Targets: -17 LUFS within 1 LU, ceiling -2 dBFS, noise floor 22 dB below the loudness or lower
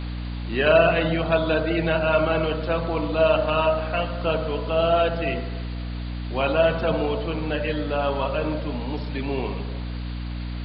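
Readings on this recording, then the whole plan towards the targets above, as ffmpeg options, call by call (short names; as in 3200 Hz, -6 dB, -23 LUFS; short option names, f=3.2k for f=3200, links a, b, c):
hum 60 Hz; harmonics up to 300 Hz; hum level -28 dBFS; noise floor -30 dBFS; noise floor target -46 dBFS; loudness -23.5 LUFS; peak -5.0 dBFS; loudness target -17.0 LUFS
-> -af "bandreject=f=60:t=h:w=6,bandreject=f=120:t=h:w=6,bandreject=f=180:t=h:w=6,bandreject=f=240:t=h:w=6,bandreject=f=300:t=h:w=6"
-af "afftdn=nr=16:nf=-30"
-af "volume=6.5dB,alimiter=limit=-2dB:level=0:latency=1"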